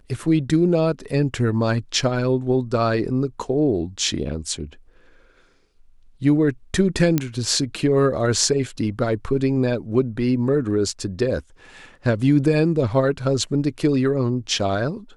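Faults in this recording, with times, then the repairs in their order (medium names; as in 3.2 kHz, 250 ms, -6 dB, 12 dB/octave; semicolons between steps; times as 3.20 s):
7.18 s: pop -6 dBFS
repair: de-click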